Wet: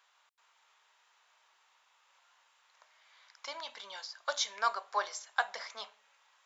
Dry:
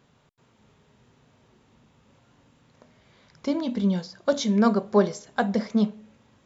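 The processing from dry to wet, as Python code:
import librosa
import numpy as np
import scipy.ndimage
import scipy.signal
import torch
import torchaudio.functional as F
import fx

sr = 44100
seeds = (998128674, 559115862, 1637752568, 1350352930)

y = scipy.signal.sosfilt(scipy.signal.butter(4, 890.0, 'highpass', fs=sr, output='sos'), x)
y = F.gain(torch.from_numpy(y), -1.0).numpy()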